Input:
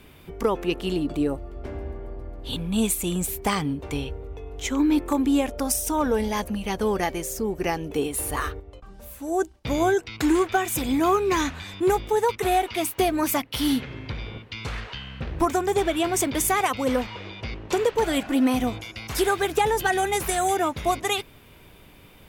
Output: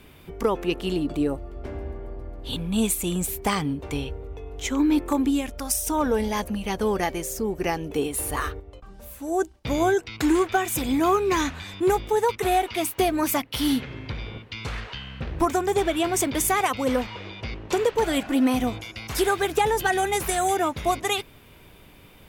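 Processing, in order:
0:05.29–0:05.86: parametric band 940 Hz → 230 Hz −9.5 dB 2 octaves

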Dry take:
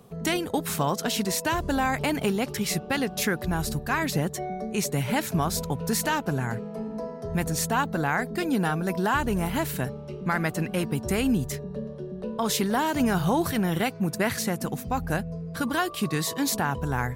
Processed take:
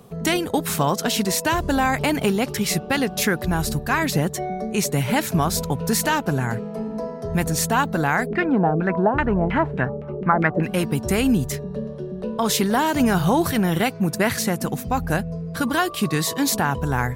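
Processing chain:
0:08.25–0:10.62: auto-filter low-pass saw down 1.8 Hz → 6 Hz 400–2,400 Hz
level +5 dB

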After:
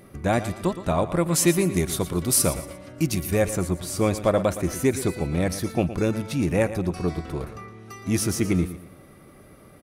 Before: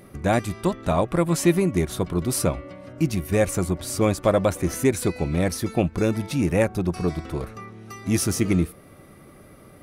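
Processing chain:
0:01.33–0:03.34: high-shelf EQ 3,500 Hz +9.5 dB
on a send: repeating echo 116 ms, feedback 34%, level −13 dB
on the sum: level −1.5 dB

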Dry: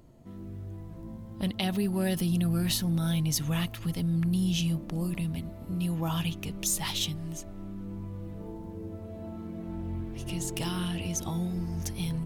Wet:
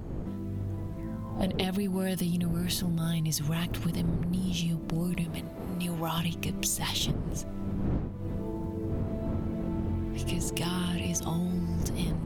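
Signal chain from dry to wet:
wind on the microphone 200 Hz −34 dBFS
0:05.24–0:06.18: low-shelf EQ 280 Hz −11 dB
downward compressor 8 to 1, threshold −32 dBFS, peak gain reduction 16.5 dB
0:00.97–0:01.63: parametric band 2,300 Hz → 400 Hz +13 dB 0.44 octaves
level +5.5 dB

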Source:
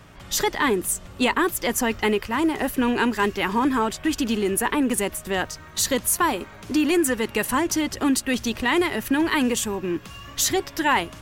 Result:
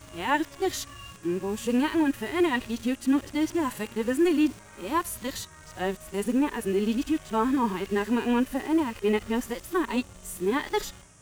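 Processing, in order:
played backwards from end to start
in parallel at −5 dB: bit-depth reduction 6 bits, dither none
on the sum: noise in a band 5,500–9,600 Hz −49 dBFS
harmonic and percussive parts rebalanced percussive −16 dB
level −5.5 dB

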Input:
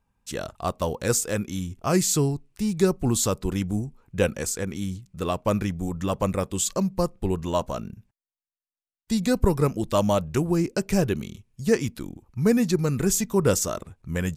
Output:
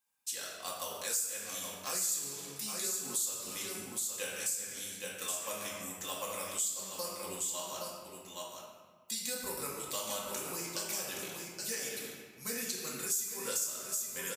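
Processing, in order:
first difference
single-tap delay 820 ms −7.5 dB
convolution reverb RT60 1.5 s, pre-delay 4 ms, DRR −5 dB
downward compressor 3 to 1, threshold −37 dBFS, peak gain reduction 15 dB
level +1.5 dB

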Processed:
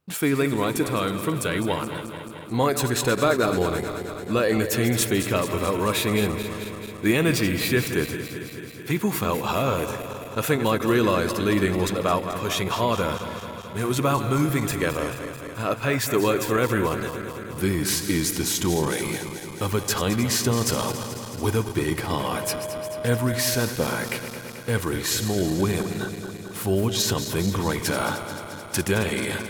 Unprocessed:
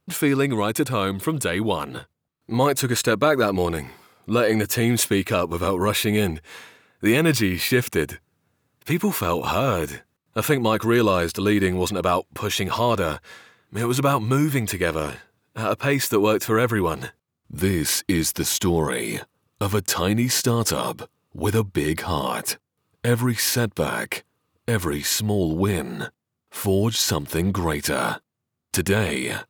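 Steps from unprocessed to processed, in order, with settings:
feedback delay that plays each chunk backwards 109 ms, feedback 84%, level −11 dB
0:22.36–0:23.61: steady tone 620 Hz −27 dBFS
level −2.5 dB

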